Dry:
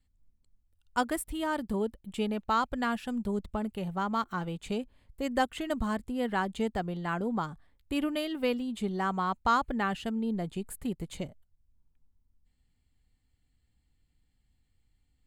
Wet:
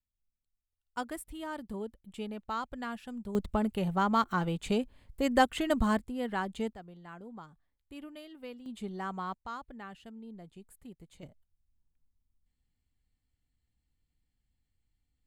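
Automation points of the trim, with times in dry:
-19.5 dB
from 0.97 s -8 dB
from 3.35 s +3.5 dB
from 5.99 s -3.5 dB
from 6.73 s -15.5 dB
from 8.66 s -7 dB
from 9.34 s -15.5 dB
from 11.23 s -7.5 dB

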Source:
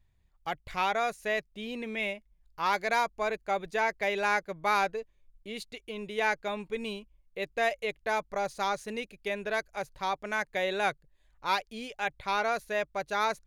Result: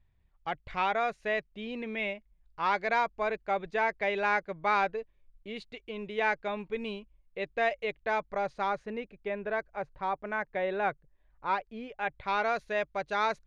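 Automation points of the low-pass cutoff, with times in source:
8.28 s 3.2 kHz
9.03 s 1.7 kHz
11.86 s 1.7 kHz
12.49 s 4.1 kHz

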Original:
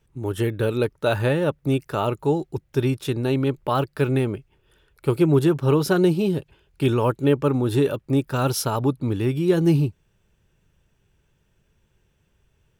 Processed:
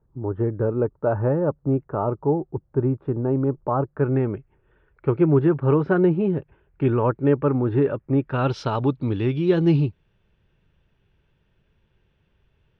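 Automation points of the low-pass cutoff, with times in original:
low-pass 24 dB/octave
3.84 s 1.2 kHz
4.33 s 2 kHz
8.15 s 2 kHz
8.62 s 4.1 kHz

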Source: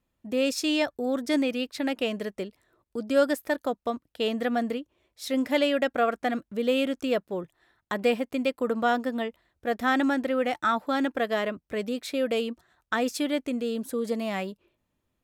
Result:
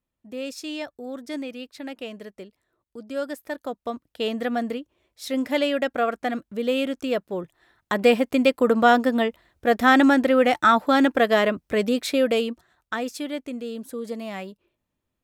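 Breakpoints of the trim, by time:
3.23 s -7 dB
4.09 s +1 dB
7.10 s +1 dB
8.31 s +8 dB
12.06 s +8 dB
13.11 s -3 dB

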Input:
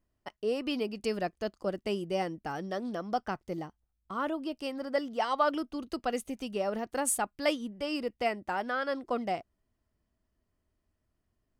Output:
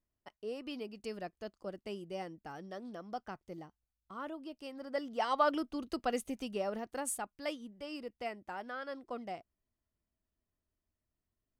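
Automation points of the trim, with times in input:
4.68 s -10 dB
5.32 s -2 dB
6.34 s -2 dB
7.34 s -10 dB

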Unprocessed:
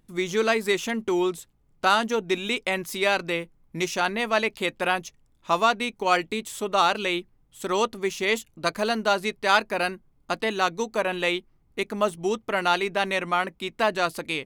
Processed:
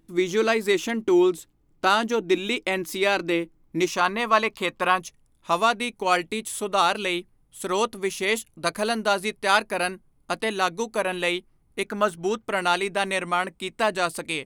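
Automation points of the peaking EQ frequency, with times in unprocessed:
peaking EQ +12 dB 0.31 oct
320 Hz
from 3.88 s 1.1 kHz
from 5.00 s 10 kHz
from 11.85 s 1.5 kHz
from 12.45 s 8.7 kHz

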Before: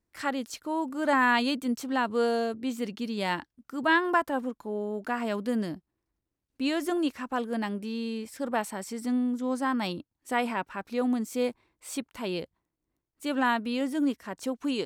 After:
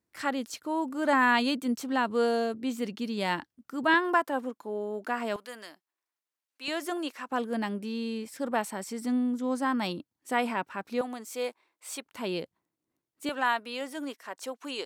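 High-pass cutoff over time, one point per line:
100 Hz
from 3.94 s 260 Hz
from 5.36 s 970 Hz
from 6.68 s 450 Hz
from 7.29 s 130 Hz
from 11.01 s 530 Hz
from 12.05 s 140 Hz
from 13.29 s 530 Hz

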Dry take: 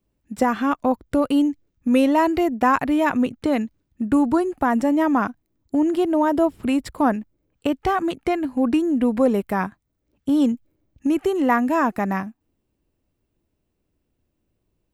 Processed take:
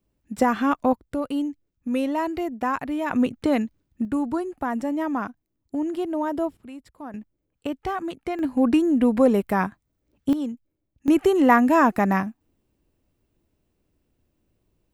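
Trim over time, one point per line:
-0.5 dB
from 0.93 s -7.5 dB
from 3.11 s -0.5 dB
from 4.05 s -7 dB
from 6.57 s -19 dB
from 7.14 s -7 dB
from 8.39 s +0.5 dB
from 10.33 s -10 dB
from 11.08 s +2.5 dB

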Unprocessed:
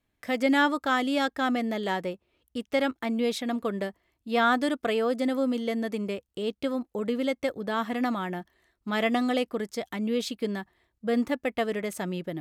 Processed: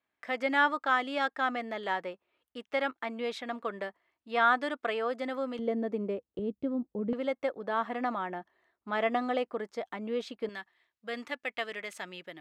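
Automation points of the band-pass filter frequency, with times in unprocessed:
band-pass filter, Q 0.76
1.3 kHz
from 5.59 s 430 Hz
from 6.39 s 180 Hz
from 7.13 s 900 Hz
from 10.49 s 2.4 kHz

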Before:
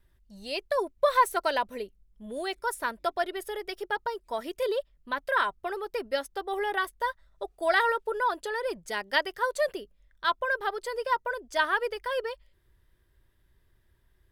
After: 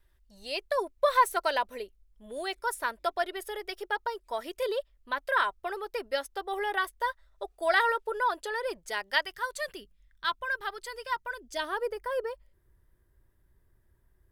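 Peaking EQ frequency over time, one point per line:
peaking EQ -11.5 dB 1.6 oct
8.87 s 160 Hz
9.39 s 540 Hz
11.34 s 540 Hz
11.88 s 3.4 kHz

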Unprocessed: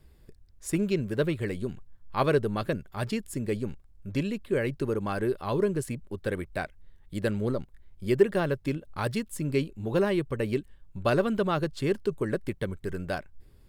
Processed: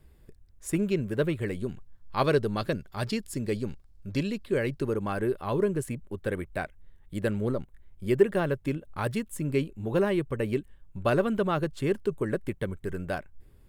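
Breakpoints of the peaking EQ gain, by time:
peaking EQ 4.7 kHz 0.73 oct
1.46 s -5 dB
2.28 s +5.5 dB
4.49 s +5.5 dB
5.17 s -6.5 dB

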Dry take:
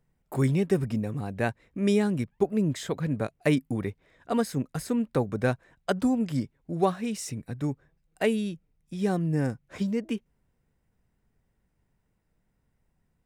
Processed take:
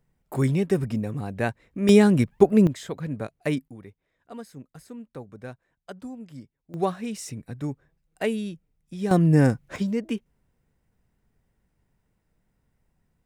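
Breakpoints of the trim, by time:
+1.5 dB
from 1.89 s +8.5 dB
from 2.67 s -2.5 dB
from 3.68 s -13.5 dB
from 6.74 s -1 dB
from 9.11 s +9 dB
from 9.76 s +2 dB

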